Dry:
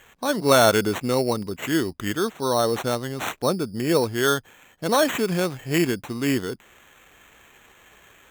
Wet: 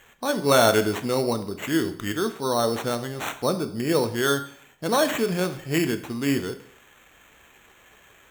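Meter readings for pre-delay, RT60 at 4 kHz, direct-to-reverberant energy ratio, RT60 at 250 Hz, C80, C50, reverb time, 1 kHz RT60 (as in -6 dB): 8 ms, 0.55 s, 8.5 dB, 0.60 s, 16.0 dB, 13.0 dB, 0.60 s, 0.60 s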